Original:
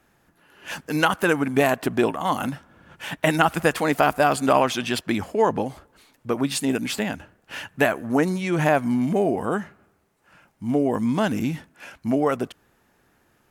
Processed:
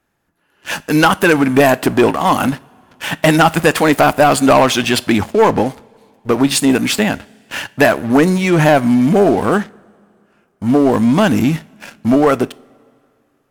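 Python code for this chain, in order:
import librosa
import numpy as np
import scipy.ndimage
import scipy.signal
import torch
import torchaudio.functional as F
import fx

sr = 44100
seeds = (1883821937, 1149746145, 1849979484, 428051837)

y = fx.leveller(x, sr, passes=3)
y = fx.rev_double_slope(y, sr, seeds[0], early_s=0.38, late_s=2.5, knee_db=-18, drr_db=18.0)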